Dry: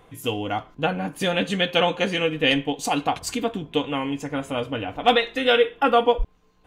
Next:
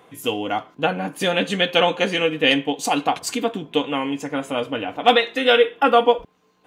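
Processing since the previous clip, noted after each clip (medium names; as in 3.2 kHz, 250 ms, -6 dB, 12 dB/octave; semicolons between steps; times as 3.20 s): high-pass 190 Hz 12 dB/octave; trim +3 dB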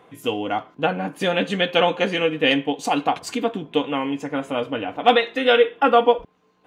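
treble shelf 4.7 kHz -9.5 dB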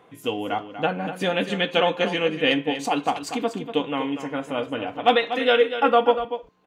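delay 241 ms -10.5 dB; trim -2.5 dB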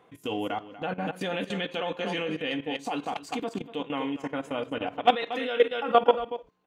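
level held to a coarse grid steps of 15 dB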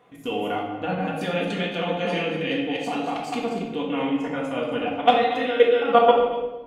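simulated room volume 500 m³, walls mixed, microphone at 1.8 m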